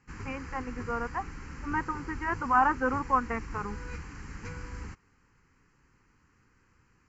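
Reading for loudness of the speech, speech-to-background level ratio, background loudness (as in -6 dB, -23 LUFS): -30.5 LUFS, 12.0 dB, -42.5 LUFS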